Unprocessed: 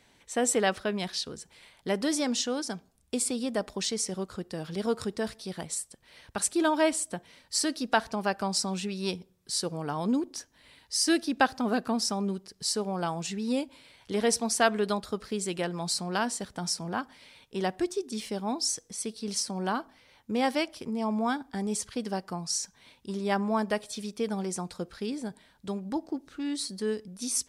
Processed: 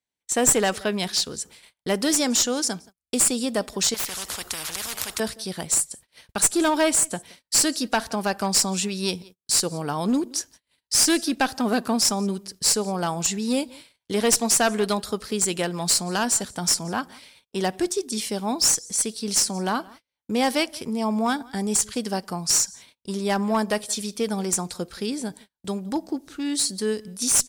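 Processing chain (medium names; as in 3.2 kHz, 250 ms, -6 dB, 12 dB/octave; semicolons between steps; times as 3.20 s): treble shelf 5 kHz +11 dB; echo from a far wall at 30 m, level -24 dB; dynamic bell 7.1 kHz, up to +7 dB, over -44 dBFS, Q 7.1; in parallel at -2.5 dB: peak limiter -16.5 dBFS, peak gain reduction 13 dB; on the sum: one-sided clip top -17.5 dBFS; gate -44 dBFS, range -36 dB; 3.94–5.20 s: spectrum-flattening compressor 10:1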